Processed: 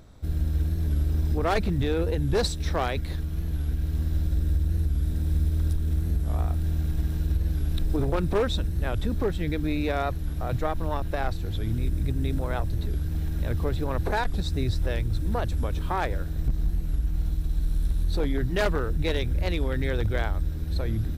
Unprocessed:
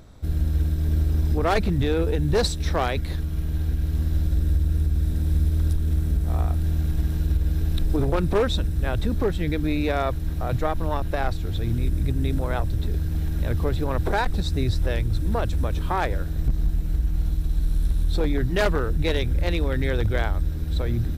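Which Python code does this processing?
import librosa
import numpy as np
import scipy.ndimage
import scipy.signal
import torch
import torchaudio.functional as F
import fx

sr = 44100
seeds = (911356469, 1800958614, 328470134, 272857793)

y = fx.record_warp(x, sr, rpm=45.0, depth_cents=100.0)
y = y * librosa.db_to_amplitude(-3.0)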